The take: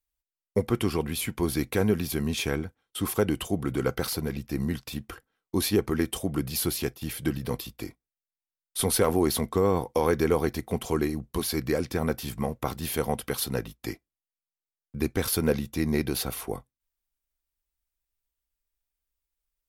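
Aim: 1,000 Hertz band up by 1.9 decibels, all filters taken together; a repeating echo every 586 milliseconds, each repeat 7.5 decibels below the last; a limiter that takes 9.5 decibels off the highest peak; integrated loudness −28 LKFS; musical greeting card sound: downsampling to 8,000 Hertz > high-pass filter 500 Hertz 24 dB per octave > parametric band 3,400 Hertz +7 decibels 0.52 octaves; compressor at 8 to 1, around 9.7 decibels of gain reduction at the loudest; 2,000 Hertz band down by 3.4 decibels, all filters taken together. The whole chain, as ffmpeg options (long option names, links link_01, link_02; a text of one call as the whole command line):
ffmpeg -i in.wav -af "equalizer=frequency=1000:width_type=o:gain=4,equalizer=frequency=2000:width_type=o:gain=-7,acompressor=threshold=-28dB:ratio=8,alimiter=limit=-24dB:level=0:latency=1,aecho=1:1:586|1172|1758|2344|2930:0.422|0.177|0.0744|0.0312|0.0131,aresample=8000,aresample=44100,highpass=frequency=500:width=0.5412,highpass=frequency=500:width=1.3066,equalizer=frequency=3400:width_type=o:width=0.52:gain=7,volume=14dB" out.wav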